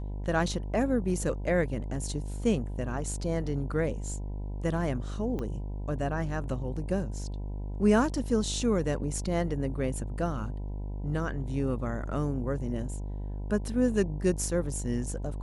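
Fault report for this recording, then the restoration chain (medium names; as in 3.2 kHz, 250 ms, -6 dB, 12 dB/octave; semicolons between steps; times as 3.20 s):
buzz 50 Hz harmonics 20 -35 dBFS
5.39 s: pop -23 dBFS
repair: de-click; de-hum 50 Hz, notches 20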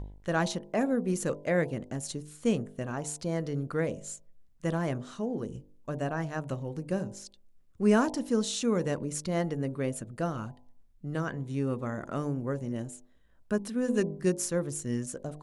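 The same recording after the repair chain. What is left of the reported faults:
5.39 s: pop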